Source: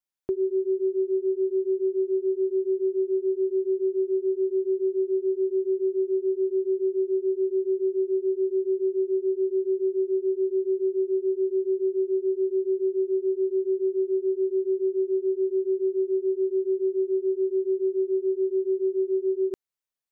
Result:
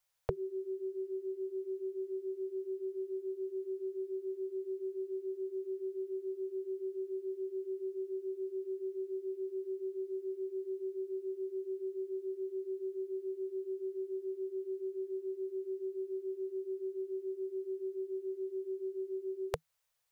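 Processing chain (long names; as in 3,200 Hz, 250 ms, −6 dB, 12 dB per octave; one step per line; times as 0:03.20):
Chebyshev band-stop filter 160–460 Hz, order 4
level +10.5 dB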